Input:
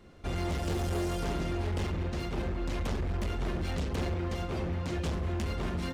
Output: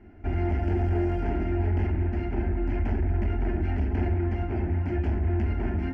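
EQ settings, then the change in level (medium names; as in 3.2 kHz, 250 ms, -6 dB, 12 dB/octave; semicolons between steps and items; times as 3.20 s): distance through air 330 m; peaking EQ 120 Hz +9 dB 1.9 oct; static phaser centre 760 Hz, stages 8; +5.0 dB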